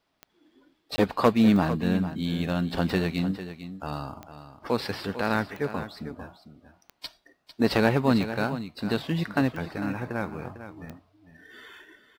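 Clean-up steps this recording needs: de-click; interpolate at 0.96 s, 20 ms; inverse comb 450 ms -12 dB

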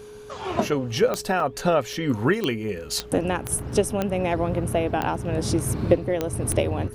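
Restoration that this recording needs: de-click; band-stop 420 Hz, Q 30; interpolate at 1.40/1.93/3.59 s, 2.4 ms

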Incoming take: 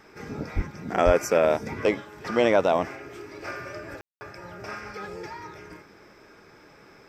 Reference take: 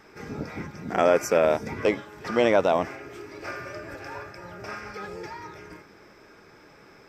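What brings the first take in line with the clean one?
de-plosive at 0.55/1.05 s; room tone fill 4.01–4.21 s

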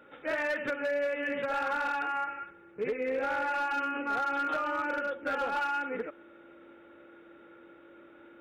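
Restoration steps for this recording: clip repair -25.5 dBFS; band-stop 340 Hz, Q 30

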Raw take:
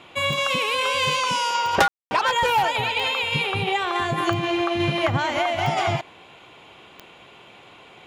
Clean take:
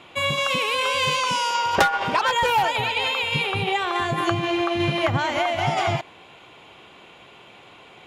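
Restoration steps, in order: de-click; room tone fill 1.88–2.11 s

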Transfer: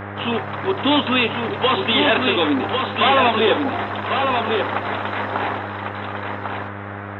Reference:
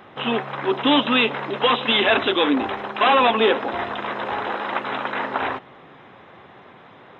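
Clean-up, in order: de-hum 100.7 Hz, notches 16; noise print and reduce 16 dB; inverse comb 1098 ms -4.5 dB

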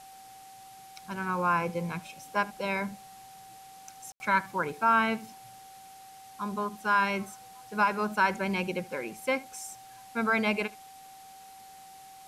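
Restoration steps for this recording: band-stop 770 Hz, Q 30; room tone fill 4.12–4.20 s; noise reduction 25 dB, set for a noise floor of -50 dBFS; inverse comb 75 ms -22 dB

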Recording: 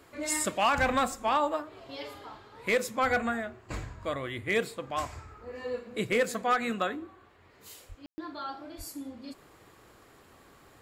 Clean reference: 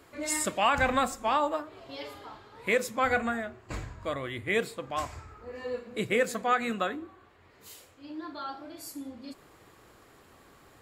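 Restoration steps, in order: clip repair -18.5 dBFS; 7.88–8.00 s: high-pass 140 Hz 24 dB/octave; 8.77–8.89 s: high-pass 140 Hz 24 dB/octave; room tone fill 8.06–8.18 s

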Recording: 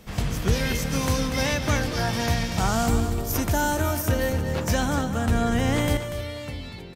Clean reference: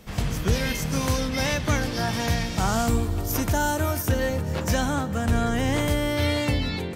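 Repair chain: inverse comb 240 ms -9.5 dB; gain correction +10.5 dB, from 5.97 s

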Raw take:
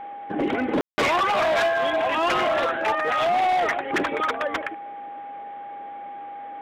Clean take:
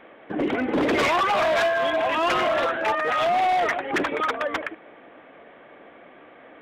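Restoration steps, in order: band-stop 810 Hz, Q 30; room tone fill 0.81–0.98 s

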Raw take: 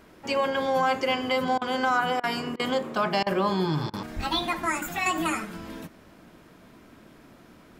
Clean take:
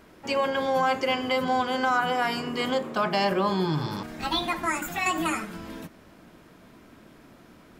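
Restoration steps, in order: de-plosive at 4.15 s; interpolate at 1.58/2.20/2.56/3.23/3.90 s, 34 ms

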